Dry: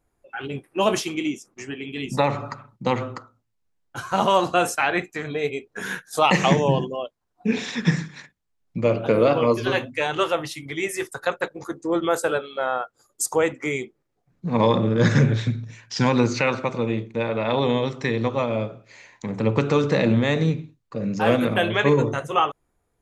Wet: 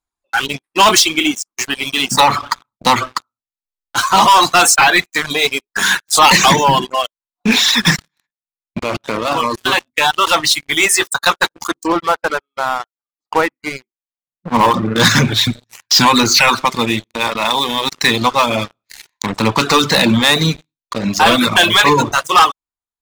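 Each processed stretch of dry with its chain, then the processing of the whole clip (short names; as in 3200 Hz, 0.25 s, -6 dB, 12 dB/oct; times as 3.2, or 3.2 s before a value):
7.96–10.27 high shelf 4100 Hz -7.5 dB + level quantiser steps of 13 dB
11.92–14.96 LPF 2200 Hz 24 dB/oct + bell 1700 Hz -4 dB 1.9 oct + upward expander, over -39 dBFS
17.16–17.92 HPF 140 Hz + level quantiser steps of 14 dB
whole clip: graphic EQ 125/500/1000/4000/8000 Hz -9/-9/+9/+12/+8 dB; sample leveller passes 5; reverb removal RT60 0.76 s; gain -5.5 dB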